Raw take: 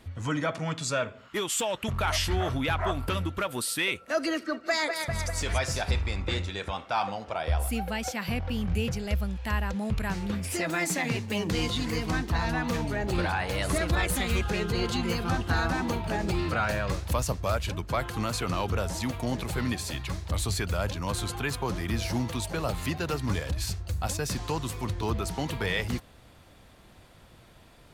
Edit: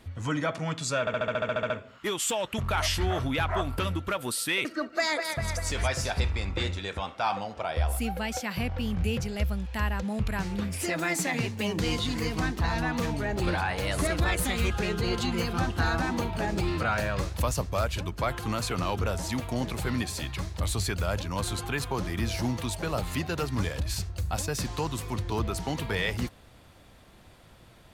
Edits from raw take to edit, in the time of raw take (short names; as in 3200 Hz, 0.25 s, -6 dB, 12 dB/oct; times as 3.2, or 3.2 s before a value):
1 stutter 0.07 s, 11 plays
3.95–4.36 cut